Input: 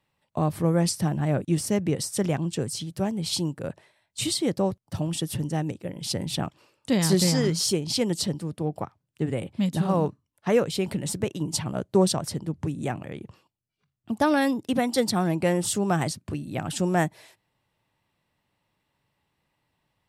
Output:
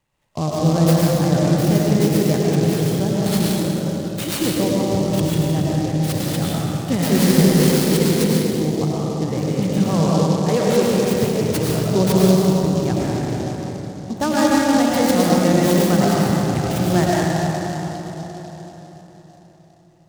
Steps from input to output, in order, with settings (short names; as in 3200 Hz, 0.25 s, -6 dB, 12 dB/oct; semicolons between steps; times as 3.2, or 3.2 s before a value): low shelf 93 Hz +8.5 dB; digital reverb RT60 4.4 s, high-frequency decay 0.5×, pre-delay 65 ms, DRR -6.5 dB; noise-modulated delay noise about 4800 Hz, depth 0.046 ms